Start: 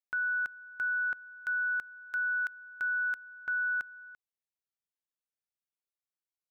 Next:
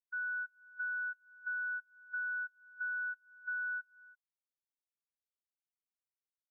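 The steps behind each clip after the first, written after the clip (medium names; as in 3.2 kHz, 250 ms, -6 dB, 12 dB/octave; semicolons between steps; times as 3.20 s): peaking EQ 1.7 kHz -5.5 dB 0.77 oct; compression 10:1, threshold -44 dBFS, peak gain reduction 10 dB; spectral contrast expander 2.5:1; trim -3.5 dB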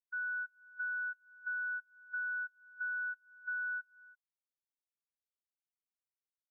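no audible change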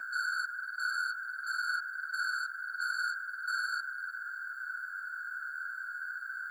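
whistle 1.5 kHz -48 dBFS; waveshaping leveller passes 3; whisper effect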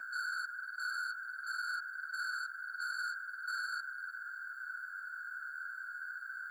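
overload inside the chain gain 29 dB; trim -4 dB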